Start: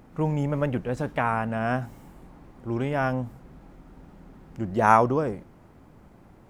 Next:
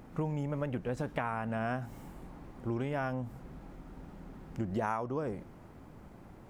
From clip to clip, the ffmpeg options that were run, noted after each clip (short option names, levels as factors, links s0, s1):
-af "acompressor=threshold=0.0282:ratio=6"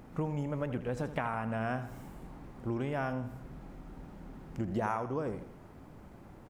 -af "aecho=1:1:81|162|243|324|405:0.237|0.114|0.0546|0.0262|0.0126"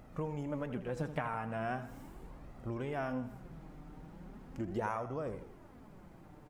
-af "flanger=delay=1.5:depth=5.2:regen=44:speed=0.39:shape=sinusoidal,volume=1.12"